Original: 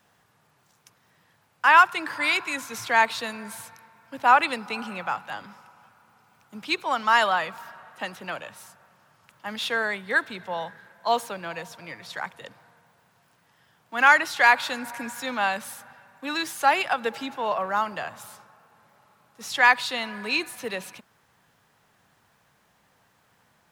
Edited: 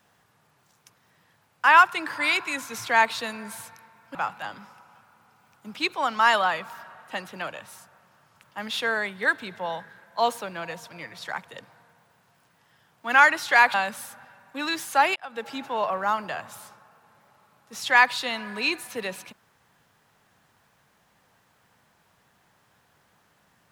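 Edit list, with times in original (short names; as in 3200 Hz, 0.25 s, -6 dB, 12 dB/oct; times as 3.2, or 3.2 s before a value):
4.15–5.03 cut
14.62–15.42 cut
16.84–17.3 fade in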